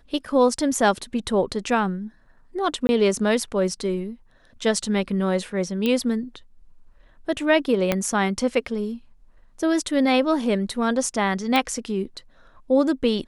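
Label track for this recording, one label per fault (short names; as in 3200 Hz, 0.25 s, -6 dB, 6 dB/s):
2.870000	2.890000	gap 20 ms
5.860000	5.860000	pop -11 dBFS
7.920000	7.920000	pop -6 dBFS
11.560000	11.560000	pop -8 dBFS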